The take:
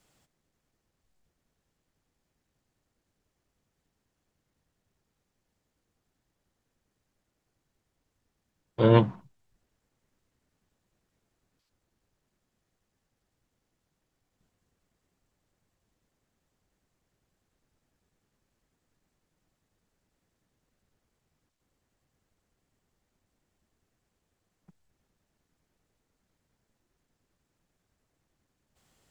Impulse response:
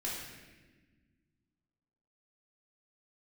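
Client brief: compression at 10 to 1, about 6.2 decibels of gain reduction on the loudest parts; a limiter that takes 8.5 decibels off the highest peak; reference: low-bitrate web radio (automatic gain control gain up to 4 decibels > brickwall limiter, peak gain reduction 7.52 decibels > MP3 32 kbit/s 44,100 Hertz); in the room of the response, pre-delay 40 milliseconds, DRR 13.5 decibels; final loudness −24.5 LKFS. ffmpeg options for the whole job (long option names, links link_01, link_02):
-filter_complex "[0:a]acompressor=threshold=-19dB:ratio=10,alimiter=limit=-20dB:level=0:latency=1,asplit=2[link_01][link_02];[1:a]atrim=start_sample=2205,adelay=40[link_03];[link_02][link_03]afir=irnorm=-1:irlink=0,volume=-16dB[link_04];[link_01][link_04]amix=inputs=2:normalize=0,dynaudnorm=maxgain=4dB,alimiter=limit=-24dB:level=0:latency=1,volume=15dB" -ar 44100 -c:a libmp3lame -b:a 32k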